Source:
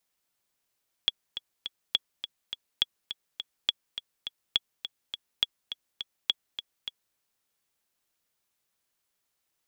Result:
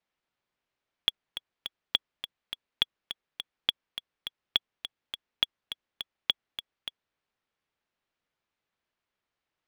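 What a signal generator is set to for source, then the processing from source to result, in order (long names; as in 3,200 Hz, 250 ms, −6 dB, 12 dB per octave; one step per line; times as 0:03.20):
click track 207 BPM, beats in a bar 3, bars 7, 3,360 Hz, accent 11 dB −9.5 dBFS
low-pass filter 3,000 Hz 12 dB per octave
in parallel at −3 dB: centre clipping without the shift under −32.5 dBFS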